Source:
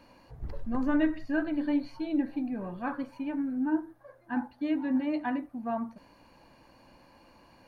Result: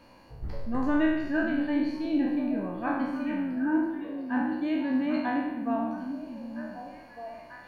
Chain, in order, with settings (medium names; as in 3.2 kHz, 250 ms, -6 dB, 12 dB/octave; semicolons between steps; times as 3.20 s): spectral sustain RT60 0.99 s; repeats whose band climbs or falls 752 ms, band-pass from 210 Hz, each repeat 1.4 oct, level -4 dB